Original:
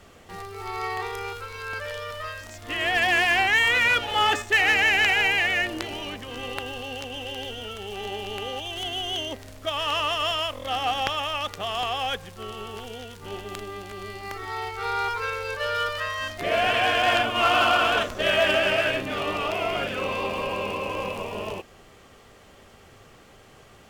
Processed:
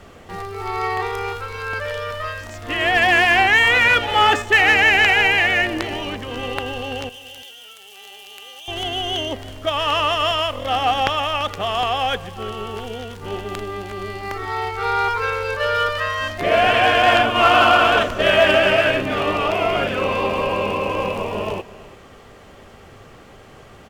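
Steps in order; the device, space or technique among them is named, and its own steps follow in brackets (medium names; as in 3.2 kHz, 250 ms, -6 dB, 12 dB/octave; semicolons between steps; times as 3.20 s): 7.09–8.68 s: differentiator; behind a face mask (treble shelf 3 kHz -7 dB); delay 337 ms -19 dB; trim +8 dB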